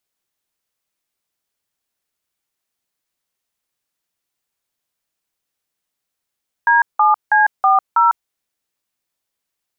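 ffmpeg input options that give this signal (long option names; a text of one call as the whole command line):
ffmpeg -f lavfi -i "aevalsrc='0.251*clip(min(mod(t,0.323),0.15-mod(t,0.323))/0.002,0,1)*(eq(floor(t/0.323),0)*(sin(2*PI*941*mod(t,0.323))+sin(2*PI*1633*mod(t,0.323)))+eq(floor(t/0.323),1)*(sin(2*PI*852*mod(t,0.323))+sin(2*PI*1209*mod(t,0.323)))+eq(floor(t/0.323),2)*(sin(2*PI*852*mod(t,0.323))+sin(2*PI*1633*mod(t,0.323)))+eq(floor(t/0.323),3)*(sin(2*PI*770*mod(t,0.323))+sin(2*PI*1209*mod(t,0.323)))+eq(floor(t/0.323),4)*(sin(2*PI*941*mod(t,0.323))+sin(2*PI*1336*mod(t,0.323))))':duration=1.615:sample_rate=44100" out.wav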